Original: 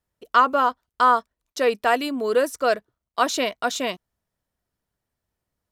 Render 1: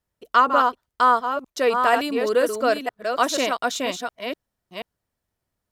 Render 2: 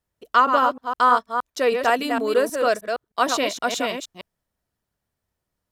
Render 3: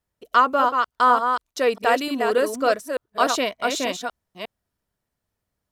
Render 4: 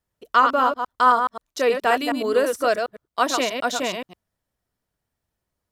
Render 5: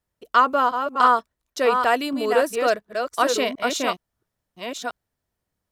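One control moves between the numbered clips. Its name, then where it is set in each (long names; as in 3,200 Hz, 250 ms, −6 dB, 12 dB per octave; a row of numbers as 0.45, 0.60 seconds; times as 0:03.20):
delay that plays each chunk backwards, delay time: 482, 156, 297, 106, 711 milliseconds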